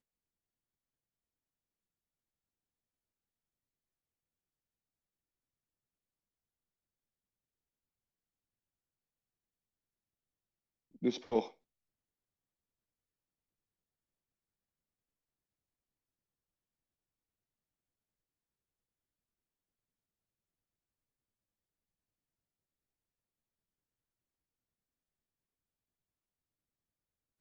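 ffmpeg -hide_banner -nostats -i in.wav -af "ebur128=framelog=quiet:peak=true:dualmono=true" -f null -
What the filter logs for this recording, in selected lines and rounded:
Integrated loudness:
  I:         -32.9 LUFS
  Threshold: -43.9 LUFS
Loudness range:
  LRA:         3.4 LU
  Threshold: -59.7 LUFS
  LRA low:   -42.6 LUFS
  LRA high:  -39.2 LUFS
True peak:
  Peak:      -17.8 dBFS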